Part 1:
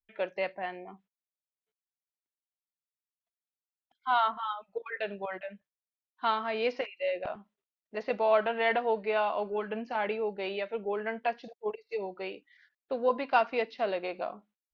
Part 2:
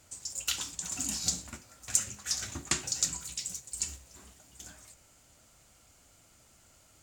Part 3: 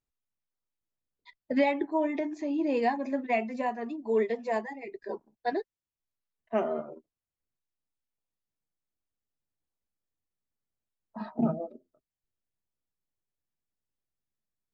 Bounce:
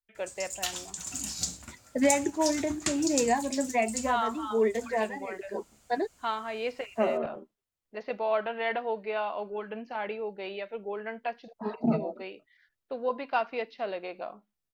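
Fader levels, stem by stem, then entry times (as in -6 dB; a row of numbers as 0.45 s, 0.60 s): -3.0 dB, -1.5 dB, +1.0 dB; 0.00 s, 0.15 s, 0.45 s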